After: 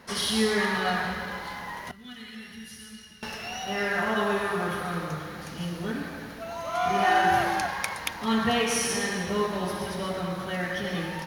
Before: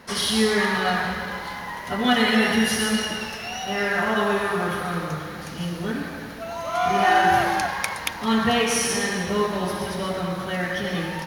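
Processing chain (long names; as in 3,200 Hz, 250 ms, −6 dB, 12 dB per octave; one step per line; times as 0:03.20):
0:01.91–0:03.23: guitar amp tone stack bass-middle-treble 6-0-2
level −4 dB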